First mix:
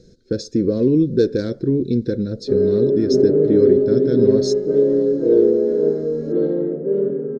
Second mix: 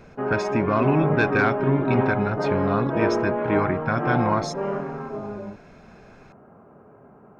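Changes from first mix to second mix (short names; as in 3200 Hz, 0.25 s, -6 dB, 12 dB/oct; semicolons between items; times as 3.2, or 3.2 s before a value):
background: entry -2.30 s; master: remove EQ curve 140 Hz 0 dB, 490 Hz +13 dB, 730 Hz -23 dB, 1100 Hz -26 dB, 1700 Hz -14 dB, 2600 Hz -23 dB, 4000 Hz +8 dB, 6600 Hz +6 dB, 11000 Hz 0 dB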